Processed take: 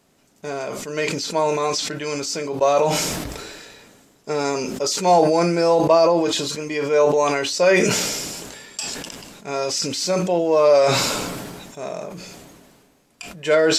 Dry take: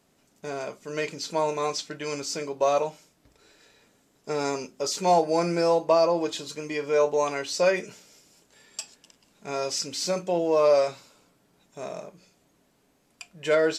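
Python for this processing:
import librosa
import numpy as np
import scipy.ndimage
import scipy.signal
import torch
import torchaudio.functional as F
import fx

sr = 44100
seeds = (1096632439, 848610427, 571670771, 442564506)

y = fx.sustainer(x, sr, db_per_s=30.0)
y = F.gain(torch.from_numpy(y), 5.0).numpy()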